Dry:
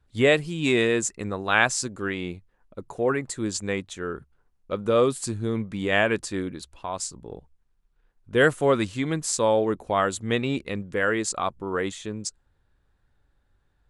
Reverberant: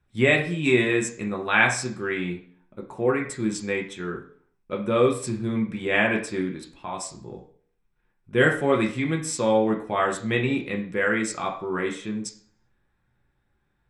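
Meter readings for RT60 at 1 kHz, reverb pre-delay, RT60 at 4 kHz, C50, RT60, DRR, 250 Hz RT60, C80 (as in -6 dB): 0.50 s, 3 ms, 0.45 s, 9.5 dB, 0.50 s, 0.0 dB, 0.60 s, 13.5 dB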